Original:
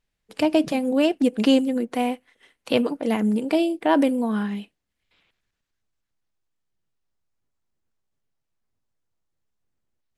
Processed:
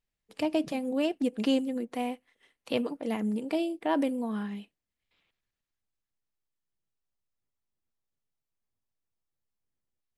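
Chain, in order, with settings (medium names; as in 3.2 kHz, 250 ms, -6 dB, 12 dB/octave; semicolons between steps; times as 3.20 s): band-stop 1.5 kHz, Q 19; trim -8.5 dB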